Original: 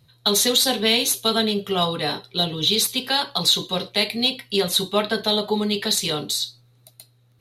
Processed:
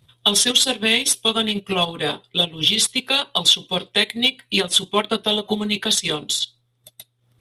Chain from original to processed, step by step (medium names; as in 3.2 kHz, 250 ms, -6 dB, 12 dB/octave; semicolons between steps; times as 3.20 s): formant shift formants -2 st; harmonic-percussive split harmonic -4 dB; transient shaper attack +1 dB, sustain -11 dB; trim +3.5 dB